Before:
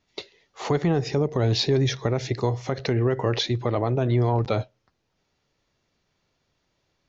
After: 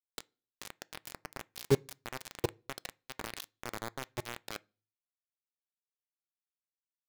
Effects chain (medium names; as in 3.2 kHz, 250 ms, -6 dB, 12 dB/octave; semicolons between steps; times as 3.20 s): 2.25–2.89 s: peaking EQ 360 Hz +5 dB 0.41 oct; level held to a coarse grid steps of 19 dB; bit crusher 5-bit; on a send: reverberation RT60 0.35 s, pre-delay 3 ms, DRR 19 dB; on the sum: trim -1.5 dB